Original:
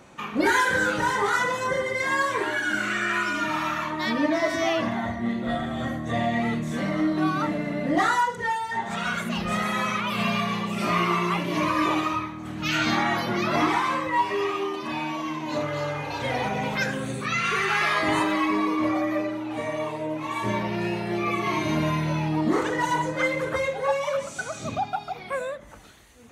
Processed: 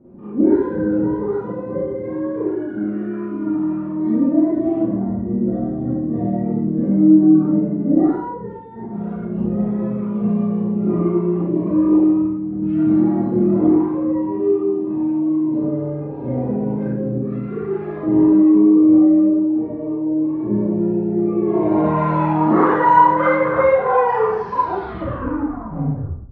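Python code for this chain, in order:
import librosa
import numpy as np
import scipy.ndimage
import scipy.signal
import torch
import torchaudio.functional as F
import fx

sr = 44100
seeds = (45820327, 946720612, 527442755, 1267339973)

y = fx.tape_stop_end(x, sr, length_s=2.63)
y = fx.filter_sweep_lowpass(y, sr, from_hz=320.0, to_hz=1200.0, start_s=21.28, end_s=22.05, q=2.0)
y = fx.rev_schroeder(y, sr, rt60_s=0.58, comb_ms=32, drr_db=-9.5)
y = F.gain(torch.from_numpy(y), -2.0).numpy()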